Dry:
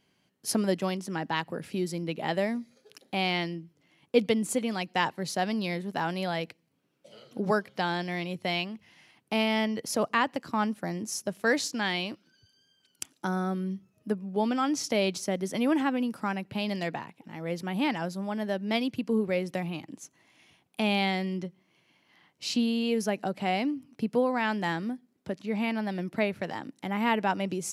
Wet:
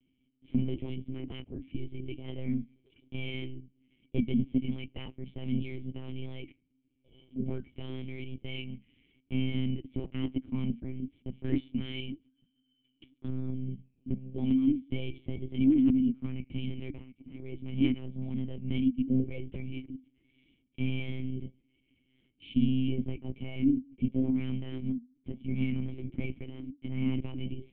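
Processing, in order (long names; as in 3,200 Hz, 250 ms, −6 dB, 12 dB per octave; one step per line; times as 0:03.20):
in parallel at −7.5 dB: wave folding −21 dBFS
on the sum: pitch vibrato 1 Hz 47 cents
flanger 0.82 Hz, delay 4.1 ms, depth 6.9 ms, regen −77%
formant resonators in series i
one-pitch LPC vocoder at 8 kHz 130 Hz
level +7 dB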